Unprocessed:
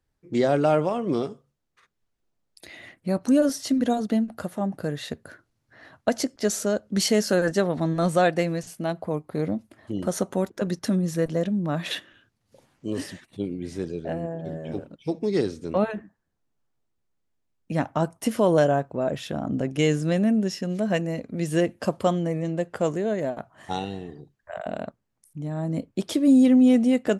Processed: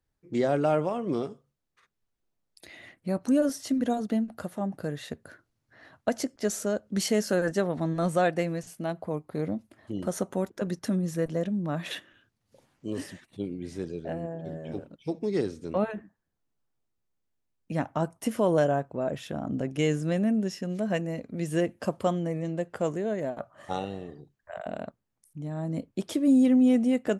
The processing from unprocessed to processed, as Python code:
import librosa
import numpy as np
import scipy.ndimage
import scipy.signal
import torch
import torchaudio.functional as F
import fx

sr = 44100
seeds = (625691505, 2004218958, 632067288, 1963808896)

y = fx.small_body(x, sr, hz=(570.0, 1200.0), ring_ms=45, db=13, at=(23.39, 24.15))
y = fx.dynamic_eq(y, sr, hz=4300.0, q=1.6, threshold_db=-48.0, ratio=4.0, max_db=-4)
y = y * 10.0 ** (-4.0 / 20.0)